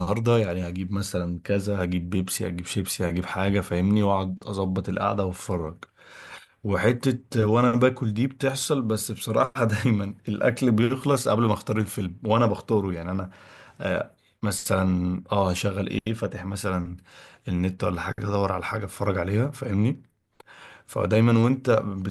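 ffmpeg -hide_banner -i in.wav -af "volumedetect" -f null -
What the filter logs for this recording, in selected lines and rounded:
mean_volume: -25.0 dB
max_volume: -7.1 dB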